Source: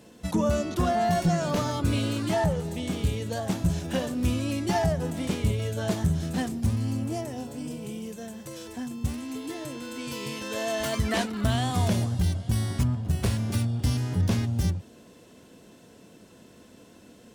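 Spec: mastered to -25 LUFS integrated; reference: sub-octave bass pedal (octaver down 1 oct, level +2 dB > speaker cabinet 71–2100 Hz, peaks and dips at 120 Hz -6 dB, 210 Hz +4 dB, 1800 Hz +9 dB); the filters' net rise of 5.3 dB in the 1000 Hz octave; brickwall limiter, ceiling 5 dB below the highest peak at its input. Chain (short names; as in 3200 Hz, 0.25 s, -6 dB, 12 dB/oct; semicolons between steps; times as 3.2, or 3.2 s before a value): bell 1000 Hz +7.5 dB; limiter -17 dBFS; octaver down 1 oct, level +2 dB; speaker cabinet 71–2100 Hz, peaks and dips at 120 Hz -6 dB, 210 Hz +4 dB, 1800 Hz +9 dB; gain +2 dB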